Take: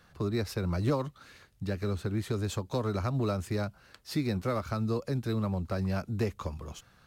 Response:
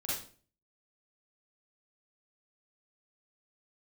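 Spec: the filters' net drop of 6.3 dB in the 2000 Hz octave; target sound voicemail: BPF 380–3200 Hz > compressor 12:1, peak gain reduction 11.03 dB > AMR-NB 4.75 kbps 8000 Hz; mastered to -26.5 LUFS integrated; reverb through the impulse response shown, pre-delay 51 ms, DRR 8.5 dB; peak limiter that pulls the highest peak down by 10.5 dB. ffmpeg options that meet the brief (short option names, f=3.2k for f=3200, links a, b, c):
-filter_complex "[0:a]equalizer=f=2k:t=o:g=-8,alimiter=level_in=5dB:limit=-24dB:level=0:latency=1,volume=-5dB,asplit=2[a][b];[1:a]atrim=start_sample=2205,adelay=51[c];[b][c]afir=irnorm=-1:irlink=0,volume=-11.5dB[d];[a][d]amix=inputs=2:normalize=0,highpass=380,lowpass=3.2k,acompressor=threshold=-46dB:ratio=12,volume=26.5dB" -ar 8000 -c:a libopencore_amrnb -b:a 4750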